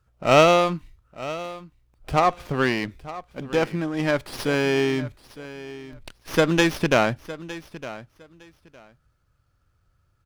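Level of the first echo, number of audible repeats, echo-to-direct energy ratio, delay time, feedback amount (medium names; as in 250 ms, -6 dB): -16.0 dB, 2, -16.0 dB, 910 ms, 19%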